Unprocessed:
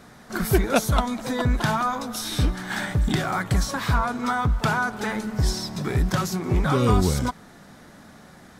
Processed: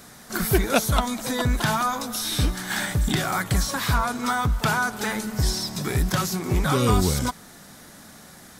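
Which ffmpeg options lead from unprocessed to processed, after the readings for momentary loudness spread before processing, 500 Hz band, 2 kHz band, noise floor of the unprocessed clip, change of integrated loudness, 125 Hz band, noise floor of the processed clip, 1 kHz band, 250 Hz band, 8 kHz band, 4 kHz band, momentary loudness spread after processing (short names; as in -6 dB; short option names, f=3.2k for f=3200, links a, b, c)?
7 LU, -1.0 dB, +1.0 dB, -48 dBFS, 0.0 dB, -1.0 dB, -47 dBFS, 0.0 dB, -1.0 dB, +5.0 dB, +3.5 dB, 6 LU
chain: -filter_complex "[0:a]acrossover=split=4100[a][b];[b]acompressor=threshold=-39dB:ratio=4:attack=1:release=60[c];[a][c]amix=inputs=2:normalize=0,crystalizer=i=3:c=0,volume=-1dB"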